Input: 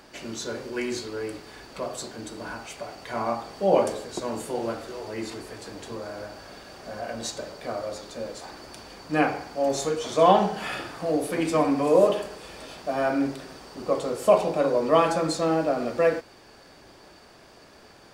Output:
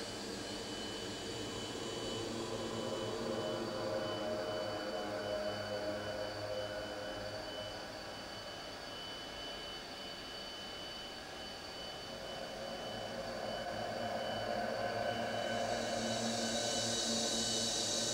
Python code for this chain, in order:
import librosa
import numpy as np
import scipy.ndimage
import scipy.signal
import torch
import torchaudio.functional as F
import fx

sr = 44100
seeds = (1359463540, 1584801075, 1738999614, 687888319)

y = fx.peak_eq(x, sr, hz=3800.0, db=4.0, octaves=1.6)
y = y + 10.0 ** (-47.0 / 20.0) * np.sin(2.0 * np.pi * 3000.0 * np.arange(len(y)) / sr)
y = fx.paulstretch(y, sr, seeds[0], factor=11.0, window_s=0.5, from_s=5.67)
y = fx.attack_slew(y, sr, db_per_s=110.0)
y = y * librosa.db_to_amplitude(-4.0)